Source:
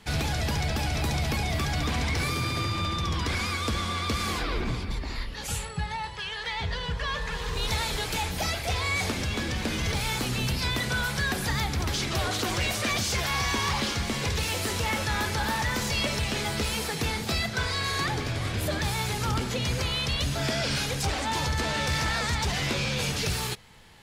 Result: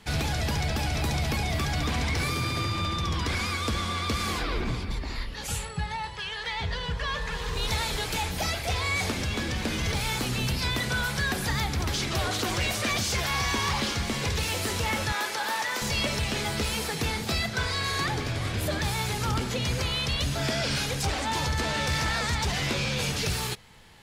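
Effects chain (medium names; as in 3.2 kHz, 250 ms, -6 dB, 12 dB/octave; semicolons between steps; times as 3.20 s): 15.12–15.82 s: high-pass 440 Hz 12 dB/octave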